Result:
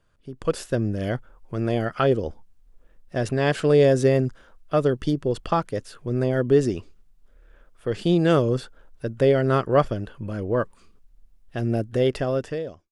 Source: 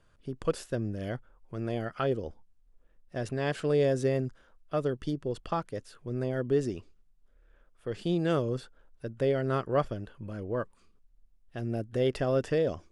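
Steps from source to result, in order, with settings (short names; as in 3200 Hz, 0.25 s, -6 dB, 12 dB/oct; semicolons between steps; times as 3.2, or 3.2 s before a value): ending faded out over 1.20 s; AGC gain up to 11 dB; gain -2 dB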